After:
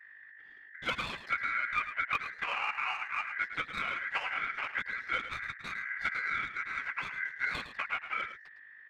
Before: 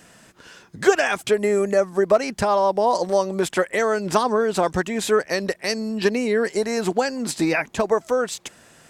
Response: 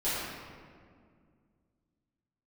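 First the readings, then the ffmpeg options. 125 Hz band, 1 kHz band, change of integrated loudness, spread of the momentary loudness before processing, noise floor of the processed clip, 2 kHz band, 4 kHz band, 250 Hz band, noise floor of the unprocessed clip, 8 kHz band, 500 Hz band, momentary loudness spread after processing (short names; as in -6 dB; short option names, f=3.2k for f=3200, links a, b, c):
-21.0 dB, -12.5 dB, -12.5 dB, 5 LU, -54 dBFS, -4.0 dB, -10.5 dB, -29.0 dB, -52 dBFS, under -25 dB, -33.0 dB, 7 LU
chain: -filter_complex "[0:a]afftfilt=real='hypot(re,im)*cos(2*PI*random(0))':imag='hypot(re,im)*sin(2*PI*random(1))':win_size=512:overlap=0.75,highpass=f=47:p=1,adynamicequalizer=threshold=0.00631:dfrequency=1400:dqfactor=2.2:tfrequency=1400:tqfactor=2.2:attack=5:release=100:ratio=0.375:range=2:mode=cutabove:tftype=bell,acrossover=split=300|2800[a][b][c];[a]acontrast=74[d];[c]alimiter=level_in=5dB:limit=-24dB:level=0:latency=1:release=157,volume=-5dB[e];[d][b][e]amix=inputs=3:normalize=0,aeval=exprs='val(0)+0.00708*(sin(2*PI*50*n/s)+sin(2*PI*2*50*n/s)/2+sin(2*PI*3*50*n/s)/3+sin(2*PI*4*50*n/s)/4+sin(2*PI*5*50*n/s)/5)':c=same,lowpass=4.3k,aeval=exprs='0.237*(abs(mod(val(0)/0.237+3,4)-2)-1)':c=same,adynamicsmooth=sensitivity=4.5:basefreq=1k,aeval=exprs='val(0)*sin(2*PI*1800*n/s)':c=same,asplit=2[f][g];[g]aecho=0:1:108:0.282[h];[f][h]amix=inputs=2:normalize=0,volume=-7.5dB"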